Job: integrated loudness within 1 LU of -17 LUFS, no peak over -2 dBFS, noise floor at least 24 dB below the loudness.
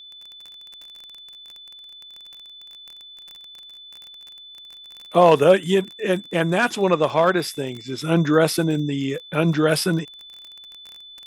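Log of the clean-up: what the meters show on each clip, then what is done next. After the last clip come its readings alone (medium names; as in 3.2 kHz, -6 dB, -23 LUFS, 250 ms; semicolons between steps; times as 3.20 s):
tick rate 27 per s; steady tone 3.5 kHz; tone level -40 dBFS; loudness -20.0 LUFS; peak level -3.5 dBFS; loudness target -17.0 LUFS
-> de-click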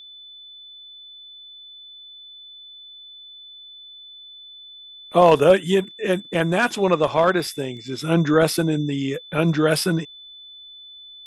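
tick rate 0.27 per s; steady tone 3.5 kHz; tone level -40 dBFS
-> band-stop 3.5 kHz, Q 30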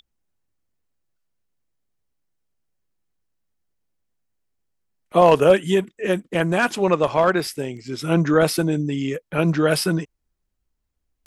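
steady tone not found; loudness -20.0 LUFS; peak level -3.5 dBFS; loudness target -17.0 LUFS
-> trim +3 dB; peak limiter -2 dBFS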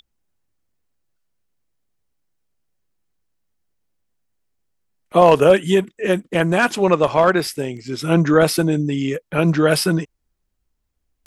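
loudness -17.5 LUFS; peak level -2.0 dBFS; noise floor -74 dBFS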